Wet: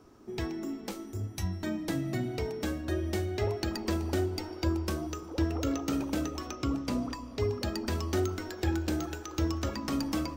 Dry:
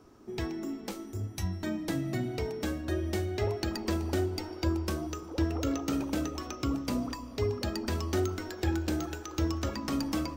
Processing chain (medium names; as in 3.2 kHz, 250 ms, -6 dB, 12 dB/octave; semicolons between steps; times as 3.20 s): 6.53–7.40 s: treble shelf 11 kHz -9.5 dB